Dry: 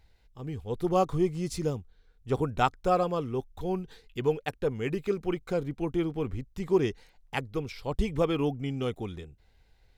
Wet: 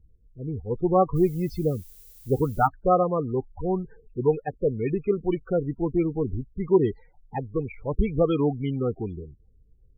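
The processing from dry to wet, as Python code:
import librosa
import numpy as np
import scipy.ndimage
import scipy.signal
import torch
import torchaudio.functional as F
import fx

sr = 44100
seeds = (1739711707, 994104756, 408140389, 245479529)

y = fx.env_lowpass(x, sr, base_hz=350.0, full_db=-25.0)
y = fx.spec_topn(y, sr, count=16)
y = fx.dmg_noise_colour(y, sr, seeds[0], colour='violet', level_db=-56.0, at=(1.15, 2.66), fade=0.02)
y = y * librosa.db_to_amplitude(5.0)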